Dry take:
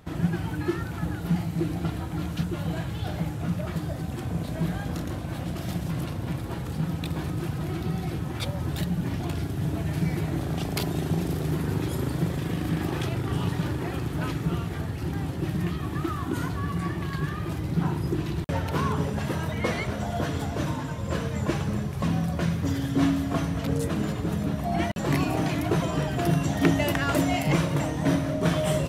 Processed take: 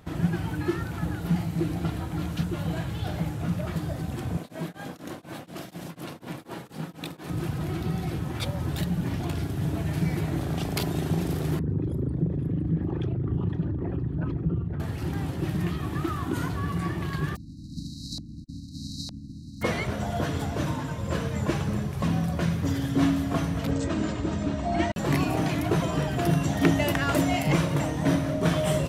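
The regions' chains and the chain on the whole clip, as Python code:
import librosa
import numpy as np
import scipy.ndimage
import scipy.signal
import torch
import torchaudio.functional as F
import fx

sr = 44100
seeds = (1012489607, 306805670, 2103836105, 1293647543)

y = fx.chain(x, sr, fx.highpass(hz=230.0, slope=12),
    fx.tremolo_abs(hz=4.1), at=(4.37, 7.3))
y = fx.chain(y, sr, fx.envelope_sharpen(power=2.0),
    fx.echo_single(ms=511, db=-10.0),
    fx.doppler_dist(depth_ms=0.12), at=(11.59, 14.8))
y = fx.spec_flatten(y, sr, power=0.18, at=(17.35, 19.61), fade=0.02)
y = fx.brickwall_bandstop(y, sr, low_hz=310.0, high_hz=3800.0, at=(17.35, 19.61), fade=0.02)
y = fx.filter_lfo_lowpass(y, sr, shape='saw_up', hz=1.1, low_hz=660.0, high_hz=3400.0, q=2.4, at=(17.35, 19.61), fade=0.02)
y = fx.chain(y, sr, fx.brickwall_lowpass(high_hz=8500.0),
    fx.comb(ms=3.2, depth=0.46), at=(23.71, 24.93))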